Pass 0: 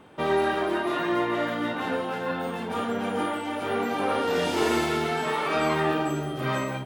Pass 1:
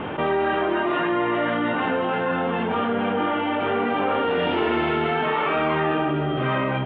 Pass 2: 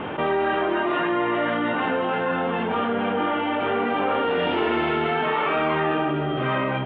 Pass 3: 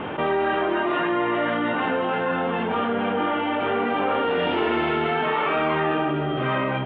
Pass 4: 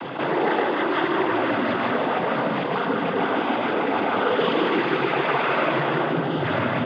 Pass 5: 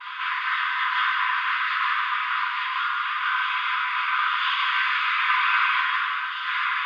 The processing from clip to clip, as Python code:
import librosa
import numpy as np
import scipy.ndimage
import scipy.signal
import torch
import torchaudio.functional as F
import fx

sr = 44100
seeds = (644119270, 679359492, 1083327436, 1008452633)

y1 = scipy.signal.sosfilt(scipy.signal.ellip(4, 1.0, 70, 3100.0, 'lowpass', fs=sr, output='sos'), x)
y1 = fx.env_flatten(y1, sr, amount_pct=70)
y1 = y1 * librosa.db_to_amplitude(1.0)
y2 = fx.low_shelf(y1, sr, hz=160.0, db=-4.0)
y3 = y2
y4 = fx.noise_vocoder(y3, sr, seeds[0], bands=16)
y4 = y4 + 10.0 ** (-4.5 / 20.0) * np.pad(y4, (int(152 * sr / 1000.0), 0))[:len(y4)]
y5 = fx.brickwall_highpass(y4, sr, low_hz=960.0)
y5 = fx.room_shoebox(y5, sr, seeds[1], volume_m3=130.0, walls='mixed', distance_m=2.0)
y5 = y5 * librosa.db_to_amplitude(-3.0)